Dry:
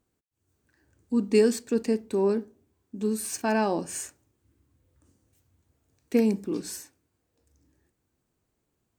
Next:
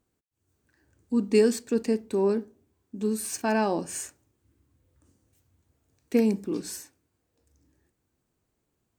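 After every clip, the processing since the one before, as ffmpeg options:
-af anull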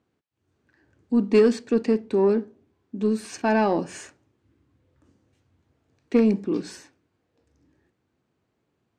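-af "highpass=100,lowpass=3.8k,aeval=exprs='0.299*(cos(1*acos(clip(val(0)/0.299,-1,1)))-cos(1*PI/2))+0.0168*(cos(5*acos(clip(val(0)/0.299,-1,1)))-cos(5*PI/2))':c=same,volume=3dB"

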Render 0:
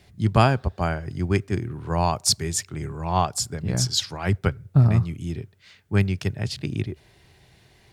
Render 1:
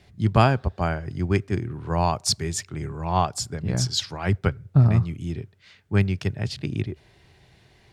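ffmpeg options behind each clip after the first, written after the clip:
-af "highshelf=f=9k:g=-10.5"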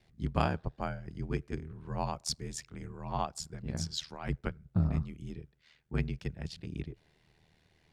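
-af "aeval=exprs='val(0)*sin(2*PI*39*n/s)':c=same,volume=-9dB"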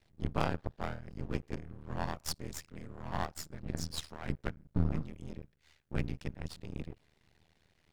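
-af "aeval=exprs='max(val(0),0)':c=same,volume=1.5dB"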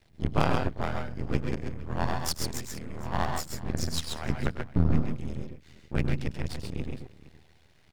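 -af "aecho=1:1:101|130|138|463:0.224|0.422|0.501|0.126,volume=6dB"

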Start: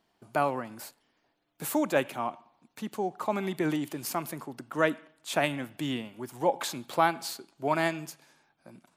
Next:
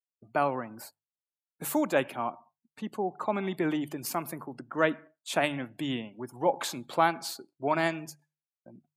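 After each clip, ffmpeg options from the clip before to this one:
-af "agate=range=-33dB:threshold=-52dB:ratio=3:detection=peak,afftdn=nr=29:nf=-50,bandreject=f=50:t=h:w=6,bandreject=f=100:t=h:w=6,bandreject=f=150:t=h:w=6"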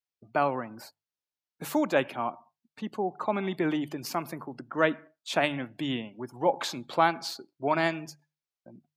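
-af "highshelf=f=6.8k:t=q:w=1.5:g=-6.5,volume=1dB"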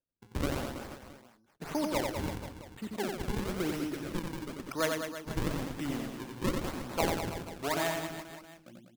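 -filter_complex "[0:a]asplit=2[a][b];[b]acompressor=threshold=-36dB:ratio=6,volume=0dB[c];[a][c]amix=inputs=2:normalize=0,acrusher=samples=40:mix=1:aa=0.000001:lfo=1:lforange=64:lforate=0.99,aecho=1:1:90|198|327.6|483.1|669.7:0.631|0.398|0.251|0.158|0.1,volume=-8.5dB"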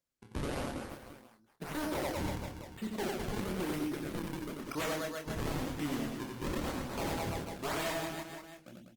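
-filter_complex "[0:a]aeval=exprs='0.0316*(abs(mod(val(0)/0.0316+3,4)-2)-1)':c=same,asplit=2[a][b];[b]adelay=27,volume=-6.5dB[c];[a][c]amix=inputs=2:normalize=0" -ar 48000 -c:a libopus -b:a 32k

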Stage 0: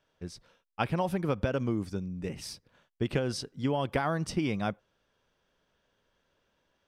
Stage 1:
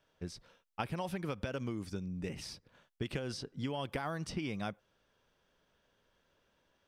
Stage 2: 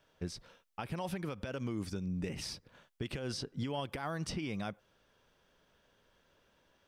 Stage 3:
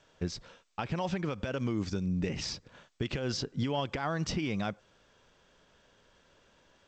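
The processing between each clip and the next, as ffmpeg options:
-filter_complex "[0:a]acrossover=split=1600|5400[a][b][c];[a]acompressor=threshold=-36dB:ratio=4[d];[b]acompressor=threshold=-45dB:ratio=4[e];[c]acompressor=threshold=-55dB:ratio=4[f];[d][e][f]amix=inputs=3:normalize=0"
-af "alimiter=level_in=7.5dB:limit=-24dB:level=0:latency=1:release=153,volume=-7.5dB,volume=4dB"
-af "volume=5.5dB" -ar 16000 -c:a g722

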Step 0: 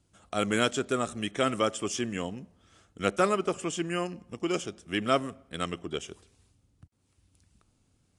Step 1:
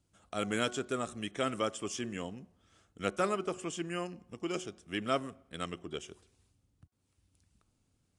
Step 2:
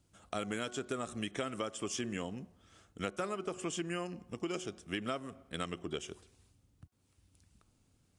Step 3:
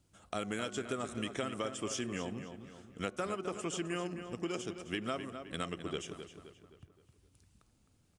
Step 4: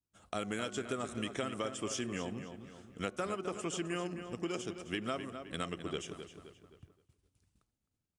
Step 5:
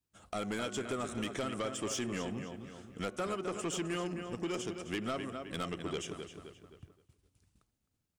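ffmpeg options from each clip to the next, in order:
-af "bandreject=f=366.2:t=h:w=4,bandreject=f=732.4:t=h:w=4,bandreject=f=1.0986k:t=h:w=4,bandreject=f=1.4648k:t=h:w=4,volume=-6dB"
-af "acompressor=threshold=-37dB:ratio=12,volume=4dB"
-filter_complex "[0:a]asplit=2[a][b];[b]adelay=261,lowpass=f=4.1k:p=1,volume=-9dB,asplit=2[c][d];[d]adelay=261,lowpass=f=4.1k:p=1,volume=0.47,asplit=2[e][f];[f]adelay=261,lowpass=f=4.1k:p=1,volume=0.47,asplit=2[g][h];[h]adelay=261,lowpass=f=4.1k:p=1,volume=0.47,asplit=2[i][j];[j]adelay=261,lowpass=f=4.1k:p=1,volume=0.47[k];[a][c][e][g][i][k]amix=inputs=6:normalize=0"
-af "agate=range=-33dB:threshold=-58dB:ratio=3:detection=peak"
-af "asoftclip=type=tanh:threshold=-32.5dB,volume=3.5dB"

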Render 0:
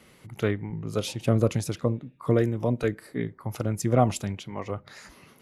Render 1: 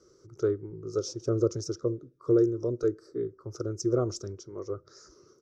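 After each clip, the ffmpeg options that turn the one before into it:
-af "firequalizer=gain_entry='entry(110,0);entry(220,-11);entry(360,14);entry(800,-16);entry(1300,4);entry(1900,-19);entry(2700,-23);entry(5600,13);entry(9800,-21)':delay=0.05:min_phase=1,volume=-7.5dB"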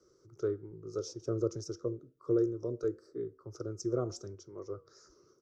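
-filter_complex "[0:a]acrossover=split=120|1100[a][b][c];[b]crystalizer=i=7.5:c=0[d];[a][d][c]amix=inputs=3:normalize=0,flanger=delay=5.5:depth=2.1:regen=-89:speed=0.91:shape=sinusoidal,volume=-2.5dB"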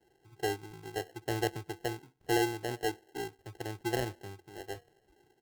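-af "adynamicsmooth=sensitivity=5:basefreq=720,acrusher=samples=37:mix=1:aa=0.000001"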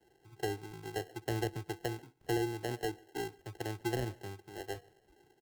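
-filter_complex "[0:a]acrossover=split=320[a][b];[b]acompressor=threshold=-35dB:ratio=10[c];[a][c]amix=inputs=2:normalize=0,asplit=2[d][e];[e]adelay=139.9,volume=-26dB,highshelf=f=4k:g=-3.15[f];[d][f]amix=inputs=2:normalize=0,volume=1dB"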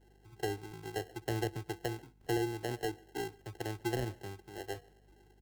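-af "aeval=exprs='val(0)+0.000631*(sin(2*PI*50*n/s)+sin(2*PI*2*50*n/s)/2+sin(2*PI*3*50*n/s)/3+sin(2*PI*4*50*n/s)/4+sin(2*PI*5*50*n/s)/5)':c=same"

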